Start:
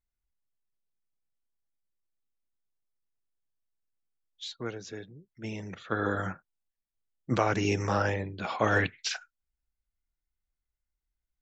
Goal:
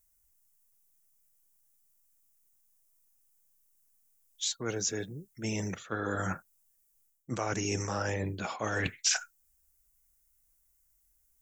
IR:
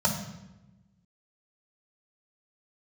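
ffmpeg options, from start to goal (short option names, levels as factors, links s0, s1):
-af "areverse,acompressor=threshold=0.0126:ratio=6,areverse,aexciter=amount=4.1:drive=7.9:freq=5800,volume=2.37"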